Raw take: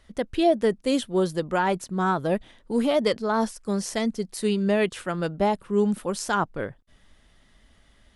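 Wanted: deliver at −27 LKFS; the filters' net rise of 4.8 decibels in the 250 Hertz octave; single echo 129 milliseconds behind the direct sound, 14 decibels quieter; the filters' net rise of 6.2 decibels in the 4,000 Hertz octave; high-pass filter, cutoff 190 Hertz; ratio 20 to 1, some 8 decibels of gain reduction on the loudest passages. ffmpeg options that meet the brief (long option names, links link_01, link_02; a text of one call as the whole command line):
ffmpeg -i in.wav -af "highpass=190,equalizer=frequency=250:width_type=o:gain=8.5,equalizer=frequency=4000:width_type=o:gain=8,acompressor=threshold=-21dB:ratio=20,aecho=1:1:129:0.2,volume=0.5dB" out.wav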